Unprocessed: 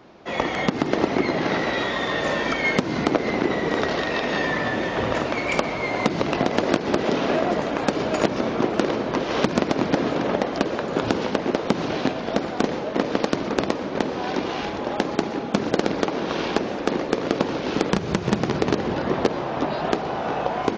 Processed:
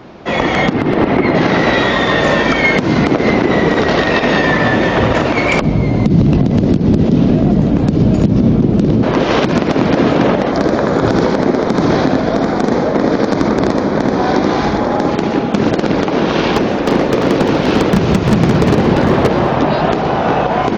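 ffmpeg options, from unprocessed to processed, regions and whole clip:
ffmpeg -i in.wav -filter_complex "[0:a]asettb=1/sr,asplit=3[link_01][link_02][link_03];[link_01]atrim=end=0.734[link_04];[link_02]atrim=start=0.73:end=1.35,asetpts=PTS-STARTPTS,afade=type=in:duration=0.004:curve=qsin,afade=type=out:start_time=0.616:duration=0.004:curve=qsin,lowpass=3000,aeval=exprs='clip(val(0),-1,0.211)':channel_layout=same[link_05];[link_03]atrim=start=1.346[link_06];[link_04][link_05]acrossfade=duration=0.004:curve1=hsin:curve2=qsin[link_07];[link_07][link_06]acrossfade=duration=0.004:curve1=qsin:curve2=hsin,asettb=1/sr,asplit=3[link_08][link_09][link_10];[link_08]atrim=end=5.614[link_11];[link_09]atrim=start=5.61:end=9.03,asetpts=PTS-STARTPTS,afade=type=in:duration=0.004:curve=qsin,afade=type=out:start_time=3.416:duration=0.004:curve=qsin,tiltshelf=frequency=740:gain=9.5,acrossover=split=240|3000[link_12][link_13][link_14];[link_13]acompressor=threshold=-40dB:ratio=2:attack=3.2:release=140:knee=2.83:detection=peak[link_15];[link_12][link_15][link_14]amix=inputs=3:normalize=0[link_16];[link_10]atrim=start=9.026[link_17];[link_11][link_16]acrossfade=duration=0.004:curve1=hsin:curve2=qsin[link_18];[link_18][link_17]acrossfade=duration=0.004:curve1=qsin:curve2=hsin,asettb=1/sr,asplit=3[link_19][link_20][link_21];[link_19]atrim=end=10.514[link_22];[link_20]atrim=start=10.51:end=15.08,asetpts=PTS-STARTPTS,afade=type=in:duration=0.004:curve=qsin,afade=type=out:start_time=4.566:duration=0.004:curve=qsin,equalizer=frequency=2800:width=3.6:gain=-12.5,aecho=1:1:80:0.596,atrim=end_sample=201537[link_23];[link_21]atrim=start=15.076[link_24];[link_22][link_23]acrossfade=duration=0.004:curve1=hsin:curve2=qsin[link_25];[link_25][link_24]acrossfade=duration=0.004:curve1=qsin:curve2=hsin,asettb=1/sr,asplit=3[link_26][link_27][link_28];[link_26]atrim=end=16.534[link_29];[link_27]atrim=start=16.53:end=19.56,asetpts=PTS-STARTPTS,afade=type=in:duration=0.004:curve=qsin,afade=type=out:start_time=3.026:duration=0.004:curve=qsin,volume=18.5dB,asoftclip=hard,volume=-18.5dB,aecho=1:1:346:0.422,atrim=end_sample=133623[link_30];[link_28]atrim=start=19.556[link_31];[link_29][link_30]acrossfade=duration=0.004:curve1=hsin:curve2=qsin[link_32];[link_32][link_31]acrossfade=duration=0.004:curve1=qsin:curve2=hsin,bass=frequency=250:gain=5,treble=frequency=4000:gain=-3,alimiter=level_in=12.5dB:limit=-1dB:release=50:level=0:latency=1,volume=-1dB" out.wav

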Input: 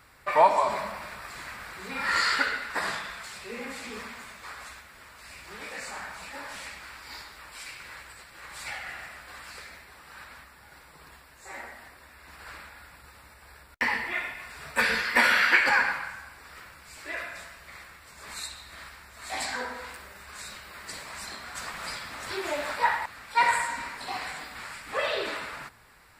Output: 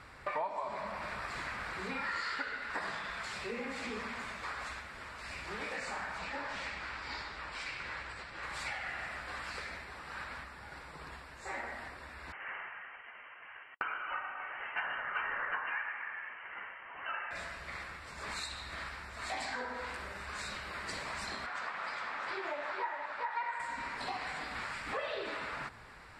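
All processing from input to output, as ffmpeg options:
ffmpeg -i in.wav -filter_complex "[0:a]asettb=1/sr,asplit=3[link_01][link_02][link_03];[link_01]atrim=end=6.184[link_04];[link_02]atrim=start=6.18:end=8.43,asetpts=PTS-STARTPTS,afade=type=in:duration=0.004:curve=qsin,afade=type=out:start_time=2.246:duration=0.004:curve=qsin,lowpass=6500,acrusher=bits=7:mode=log:mix=0:aa=0.000001[link_05];[link_03]atrim=start=8.426[link_06];[link_04][link_05]acrossfade=duration=0.004:curve1=hsin:curve2=qsin[link_07];[link_07][link_06]acrossfade=duration=0.004:curve1=qsin:curve2=hsin,asettb=1/sr,asplit=3[link_08][link_09][link_10];[link_08]atrim=end=12.324[link_11];[link_09]atrim=start=12.32:end=17.31,asetpts=PTS-STARTPTS,afade=type=in:duration=0.004:curve=qsin,afade=type=out:start_time=4.986:duration=0.004:curve=qsin,highpass=360,equalizer=frequency=800:width_type=o:width=0.25:gain=-11.5,lowpass=frequency=2800:width_type=q:width=0.5098,lowpass=frequency=2800:width_type=q:width=0.6013,lowpass=frequency=2800:width_type=q:width=0.9,lowpass=frequency=2800:width_type=q:width=2.563,afreqshift=-3300[link_12];[link_10]atrim=start=17.306[link_13];[link_11][link_12]acrossfade=duration=0.004:curve1=hsin:curve2=qsin[link_14];[link_14][link_13]acrossfade=duration=0.004:curve1=qsin:curve2=hsin,asettb=1/sr,asplit=3[link_15][link_16][link_17];[link_15]atrim=end=21.464[link_18];[link_16]atrim=start=21.46:end=23.6,asetpts=PTS-STARTPTS,afade=type=in:duration=0.004:curve=qsin,afade=type=out:start_time=2.136:duration=0.004:curve=qsin,bandpass=frequency=1200:width_type=q:width=0.6,aecho=1:1:408:0.668,atrim=end_sample=94374[link_19];[link_17]atrim=start=23.596[link_20];[link_18][link_19]acrossfade=duration=0.004:curve1=hsin:curve2=qsin[link_21];[link_21][link_20]acrossfade=duration=0.004:curve1=qsin:curve2=hsin,lowpass=8100,highshelf=frequency=4100:gain=-8,acompressor=threshold=-41dB:ratio=5,volume=4.5dB" out.wav

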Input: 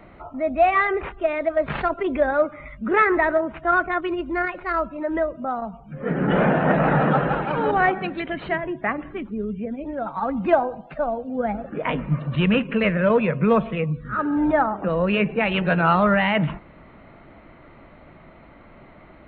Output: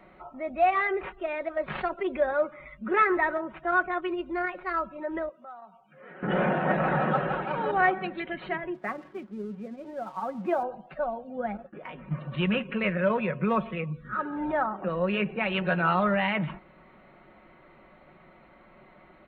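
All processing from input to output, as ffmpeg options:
ffmpeg -i in.wav -filter_complex "[0:a]asettb=1/sr,asplit=3[link_01][link_02][link_03];[link_01]atrim=end=5.294[link_04];[link_02]atrim=start=5.29:end=6.23,asetpts=PTS-STARTPTS,afade=type=in:duration=0.004:curve=qsin,afade=type=out:start_time=0.936:duration=0.004:curve=qsin,highpass=frequency=1200:poles=1,acompressor=threshold=-41dB:ratio=2:attack=3.2:release=140:knee=1:detection=peak[link_05];[link_03]atrim=start=6.226[link_06];[link_04][link_05]acrossfade=duration=0.004:curve1=hsin:curve2=qsin[link_07];[link_07][link_06]acrossfade=duration=0.004:curve1=qsin:curve2=hsin,asettb=1/sr,asplit=3[link_08][link_09][link_10];[link_08]atrim=end=8.744[link_11];[link_09]atrim=start=8.74:end=10.63,asetpts=PTS-STARTPTS,afade=type=in:duration=0.004:curve=qsin,afade=type=out:start_time=1.886:duration=0.004:curve=qsin,highpass=130,highshelf=frequency=2100:gain=-10,aeval=exprs='sgn(val(0))*max(abs(val(0))-0.00316,0)':channel_layout=same[link_12];[link_10]atrim=start=10.626[link_13];[link_11][link_12]acrossfade=duration=0.004:curve1=hsin:curve2=qsin[link_14];[link_14][link_13]acrossfade=duration=0.004:curve1=qsin:curve2=hsin,asettb=1/sr,asplit=3[link_15][link_16][link_17];[link_15]atrim=end=11.574[link_18];[link_16]atrim=start=11.57:end=12.11,asetpts=PTS-STARTPTS,afade=type=in:duration=0.004:curve=qsin,afade=type=out:start_time=0.536:duration=0.004:curve=qsin,agate=range=-33dB:threshold=-30dB:ratio=3:release=100:detection=peak,acompressor=threshold=-32dB:ratio=4:attack=3.2:release=140:knee=1:detection=peak[link_19];[link_17]atrim=start=12.106[link_20];[link_18][link_19]acrossfade=duration=0.004:curve1=hsin:curve2=qsin[link_21];[link_21][link_20]acrossfade=duration=0.004:curve1=qsin:curve2=hsin,lowshelf=frequency=200:gain=-8,aecho=1:1:5.4:0.47,volume=-6dB" out.wav

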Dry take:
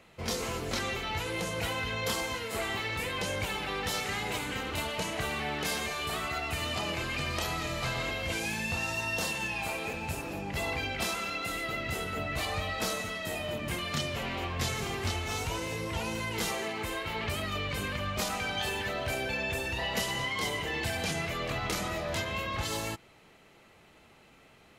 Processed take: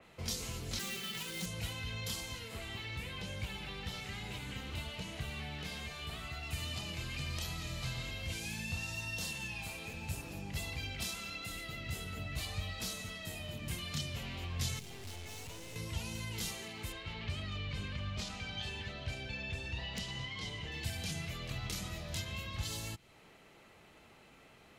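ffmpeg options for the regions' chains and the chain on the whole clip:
ffmpeg -i in.wav -filter_complex "[0:a]asettb=1/sr,asplit=3[link_01][link_02][link_03];[link_01]atrim=end=0.794[link_04];[link_02]atrim=start=0.79:end=1.46,asetpts=PTS-STARTPTS,afade=type=in:duration=0.004:curve=qsin,afade=type=out:start_time=0.666:duration=0.004:curve=qsin,highpass=frequency=160:width=0.5412,highpass=frequency=160:width=1.3066,aecho=1:1:5.2:0.95,atrim=end_sample=29547,acrusher=bits=2:mode=log:mix=0:aa=0.000001[link_05];[link_03]atrim=start=1.456[link_06];[link_04][link_05]acrossfade=duration=0.004:curve1=hsin:curve2=qsin[link_07];[link_07][link_06]acrossfade=duration=0.004:curve1=qsin:curve2=hsin,asettb=1/sr,asplit=3[link_08][link_09][link_10];[link_08]atrim=end=2.494[link_11];[link_09]atrim=start=2.49:end=6.43,asetpts=PTS-STARTPTS,afade=type=in:duration=0.004:curve=qsin,afade=type=out:start_time=3.936:duration=0.004:curve=qsin,acrossover=split=3700[link_12][link_13];[link_13]acompressor=threshold=-50dB:ratio=4:attack=1:release=60[link_14];[link_12][link_14]amix=inputs=2:normalize=0,asplit=2[link_15][link_16];[link_16]adelay=15,volume=-12dB[link_17];[link_15][link_17]amix=inputs=2:normalize=0,atrim=end_sample=173754[link_18];[link_10]atrim=start=6.426[link_19];[link_11][link_18]acrossfade=duration=0.004:curve1=hsin:curve2=qsin[link_20];[link_20][link_19]acrossfade=duration=0.004:curve1=qsin:curve2=hsin,asettb=1/sr,asplit=3[link_21][link_22][link_23];[link_21]atrim=end=14.794[link_24];[link_22]atrim=start=14.79:end=15.76,asetpts=PTS-STARTPTS,afade=type=in:duration=0.004:curve=qsin,afade=type=out:start_time=0.966:duration=0.004:curve=qsin,highpass=66,equalizer=frequency=1300:width_type=o:width=0.54:gain=-12.5,aeval=exprs='(tanh(126*val(0)+0.65)-tanh(0.65))/126':channel_layout=same[link_25];[link_23]atrim=start=15.756[link_26];[link_24][link_25]acrossfade=duration=0.004:curve1=hsin:curve2=qsin[link_27];[link_27][link_26]acrossfade=duration=0.004:curve1=qsin:curve2=hsin,asettb=1/sr,asplit=3[link_28][link_29][link_30];[link_28]atrim=end=16.924[link_31];[link_29]atrim=start=16.92:end=20.72,asetpts=PTS-STARTPTS,afade=type=in:duration=0.004:curve=qsin,afade=type=out:start_time=3.796:duration=0.004:curve=qsin,lowpass=4800,aeval=exprs='(mod(9.44*val(0)+1,2)-1)/9.44':channel_layout=same[link_32];[link_30]atrim=start=20.716[link_33];[link_31][link_32]acrossfade=duration=0.004:curve1=hsin:curve2=qsin[link_34];[link_34][link_33]acrossfade=duration=0.004:curve1=qsin:curve2=hsin,acrossover=split=190|3000[link_35][link_36][link_37];[link_36]acompressor=threshold=-48dB:ratio=6[link_38];[link_35][link_38][link_37]amix=inputs=3:normalize=0,adynamicequalizer=threshold=0.00398:dfrequency=4100:dqfactor=0.7:tfrequency=4100:tqfactor=0.7:attack=5:release=100:ratio=0.375:range=2:mode=cutabove:tftype=highshelf,volume=-1.5dB" out.wav

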